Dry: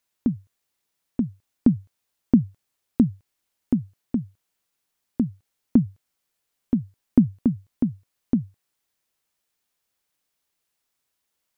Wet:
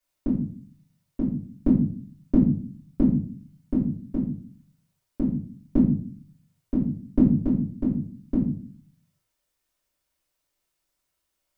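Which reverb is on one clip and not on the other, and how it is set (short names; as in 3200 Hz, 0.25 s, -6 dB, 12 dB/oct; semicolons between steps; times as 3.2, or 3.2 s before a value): shoebox room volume 37 m³, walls mixed, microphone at 2.5 m; gain -12 dB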